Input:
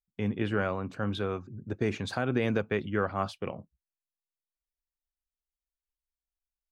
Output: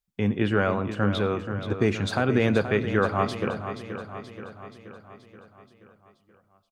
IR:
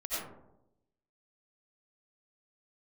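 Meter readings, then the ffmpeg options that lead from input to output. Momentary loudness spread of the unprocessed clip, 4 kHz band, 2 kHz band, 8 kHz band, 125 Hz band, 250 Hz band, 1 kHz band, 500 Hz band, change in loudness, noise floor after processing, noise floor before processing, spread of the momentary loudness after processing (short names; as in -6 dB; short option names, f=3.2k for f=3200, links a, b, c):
10 LU, +6.5 dB, +6.5 dB, +6.5 dB, +7.0 dB, +6.5 dB, +6.5 dB, +6.5 dB, +6.0 dB, -68 dBFS, under -85 dBFS, 17 LU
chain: -filter_complex "[0:a]aecho=1:1:478|956|1434|1912|2390|2868|3346:0.316|0.183|0.106|0.0617|0.0358|0.0208|0.012,asplit=2[a][b];[1:a]atrim=start_sample=2205[c];[b][c]afir=irnorm=-1:irlink=0,volume=-21dB[d];[a][d]amix=inputs=2:normalize=0,volume=5.5dB"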